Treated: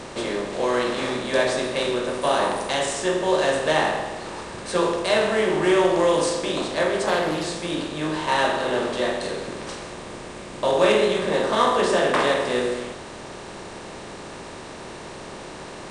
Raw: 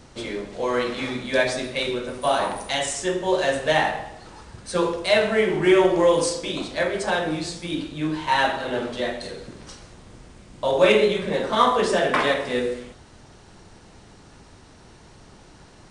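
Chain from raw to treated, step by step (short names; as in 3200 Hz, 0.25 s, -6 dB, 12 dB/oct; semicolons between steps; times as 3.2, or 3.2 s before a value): per-bin compression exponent 0.6; dynamic EQ 2300 Hz, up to -5 dB, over -40 dBFS, Q 5.8; 7.06–7.46 Doppler distortion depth 0.26 ms; gain -4 dB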